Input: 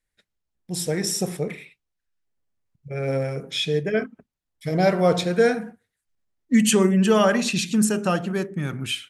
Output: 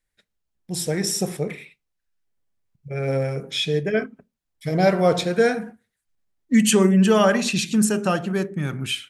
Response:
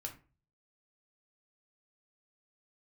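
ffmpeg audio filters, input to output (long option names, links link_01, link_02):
-filter_complex "[0:a]asplit=2[link_01][link_02];[1:a]atrim=start_sample=2205,afade=type=out:start_time=0.31:duration=0.01,atrim=end_sample=14112,asetrate=74970,aresample=44100[link_03];[link_02][link_03]afir=irnorm=-1:irlink=0,volume=-9dB[link_04];[link_01][link_04]amix=inputs=2:normalize=0"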